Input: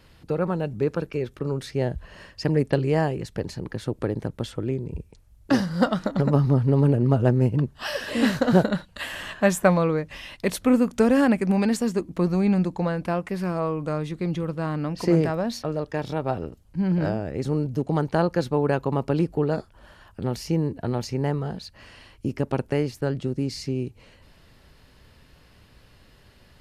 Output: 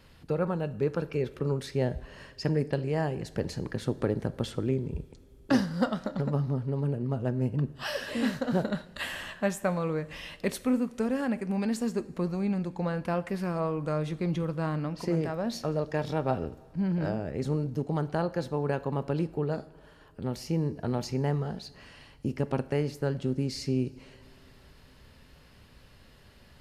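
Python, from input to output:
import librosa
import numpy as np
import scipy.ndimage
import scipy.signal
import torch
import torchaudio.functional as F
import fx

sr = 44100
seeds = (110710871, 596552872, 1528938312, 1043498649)

y = fx.rider(x, sr, range_db=5, speed_s=0.5)
y = fx.rev_double_slope(y, sr, seeds[0], early_s=0.56, late_s=3.7, knee_db=-18, drr_db=13.0)
y = y * librosa.db_to_amplitude(-6.5)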